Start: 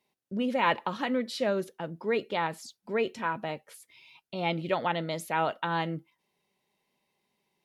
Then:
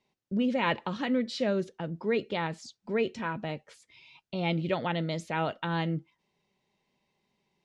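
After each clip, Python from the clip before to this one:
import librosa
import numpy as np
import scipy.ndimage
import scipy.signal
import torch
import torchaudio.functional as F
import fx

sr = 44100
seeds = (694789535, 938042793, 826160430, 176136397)

y = fx.dynamic_eq(x, sr, hz=970.0, q=1.0, threshold_db=-41.0, ratio=4.0, max_db=-5)
y = scipy.signal.sosfilt(scipy.signal.butter(4, 7400.0, 'lowpass', fs=sr, output='sos'), y)
y = fx.low_shelf(y, sr, hz=160.0, db=10.0)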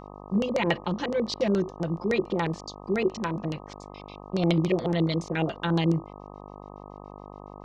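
y = x + 0.9 * np.pad(x, (int(5.8 * sr / 1000.0), 0))[:len(x)]
y = fx.filter_lfo_lowpass(y, sr, shape='square', hz=7.1, low_hz=390.0, high_hz=5800.0, q=2.5)
y = fx.dmg_buzz(y, sr, base_hz=50.0, harmonics=25, level_db=-44.0, tilt_db=-1, odd_only=False)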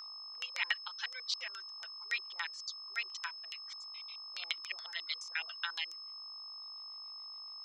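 y = fx.dereverb_blind(x, sr, rt60_s=1.1)
y = scipy.signal.sosfilt(scipy.signal.butter(4, 1400.0, 'highpass', fs=sr, output='sos'), y)
y = y + 10.0 ** (-43.0 / 20.0) * np.sin(2.0 * np.pi * 5200.0 * np.arange(len(y)) / sr)
y = F.gain(torch.from_numpy(y), -2.0).numpy()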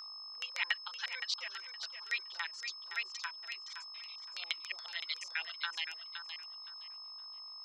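y = fx.echo_feedback(x, sr, ms=517, feedback_pct=22, wet_db=-8.5)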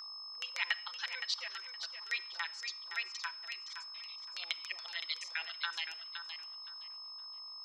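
y = fx.room_shoebox(x, sr, seeds[0], volume_m3=2800.0, walls='furnished', distance_m=0.72)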